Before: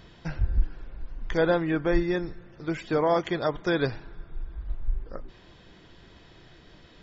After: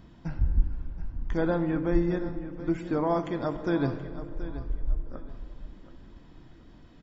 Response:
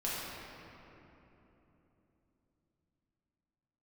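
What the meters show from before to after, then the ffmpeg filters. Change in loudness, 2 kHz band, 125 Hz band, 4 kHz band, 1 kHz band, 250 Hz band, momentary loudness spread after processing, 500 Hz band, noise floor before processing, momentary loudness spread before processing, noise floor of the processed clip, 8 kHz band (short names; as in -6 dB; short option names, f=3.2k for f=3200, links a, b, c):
-2.5 dB, -7.5 dB, +1.0 dB, -10.5 dB, -3.5 dB, +1.0 dB, 17 LU, -4.0 dB, -53 dBFS, 19 LU, -52 dBFS, n/a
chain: -filter_complex "[0:a]firequalizer=gain_entry='entry(170,0);entry(260,5);entry(410,-7);entry(920,-3);entry(1700,-9);entry(3900,-12);entry(8000,-5)':delay=0.05:min_phase=1,aecho=1:1:727|1454|2181:0.2|0.0579|0.0168,asplit=2[a][b];[1:a]atrim=start_sample=2205,asetrate=79380,aresample=44100,adelay=15[c];[b][c]afir=irnorm=-1:irlink=0,volume=-10.5dB[d];[a][d]amix=inputs=2:normalize=0"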